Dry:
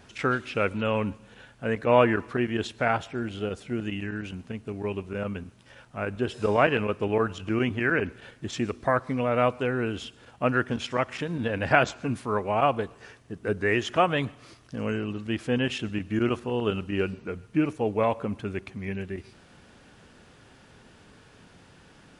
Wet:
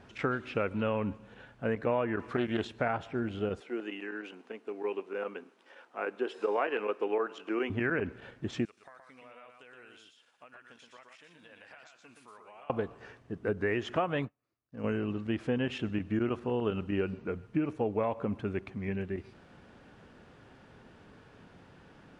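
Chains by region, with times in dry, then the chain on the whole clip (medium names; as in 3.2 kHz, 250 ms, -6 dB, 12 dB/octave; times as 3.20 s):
2.19–2.65 s: treble shelf 3 kHz +8.5 dB + loudspeaker Doppler distortion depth 0.2 ms
3.60–7.70 s: high-pass 330 Hz 24 dB/octave + band-stop 610 Hz, Q 10
8.65–12.70 s: differentiator + compression 10:1, threshold -46 dBFS + delay 121 ms -5 dB
14.19–14.84 s: band-stop 3.2 kHz, Q 8.4 + upward expansion 2.5:1, over -49 dBFS
whole clip: low-pass 1.6 kHz 6 dB/octave; bass shelf 120 Hz -4 dB; compression 6:1, threshold -26 dBFS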